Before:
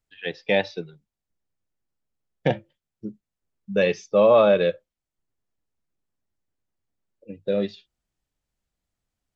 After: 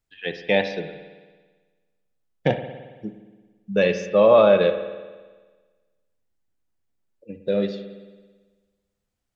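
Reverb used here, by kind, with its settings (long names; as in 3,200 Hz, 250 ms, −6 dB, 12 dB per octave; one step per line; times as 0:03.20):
spring reverb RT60 1.4 s, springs 55 ms, chirp 45 ms, DRR 8.5 dB
level +1 dB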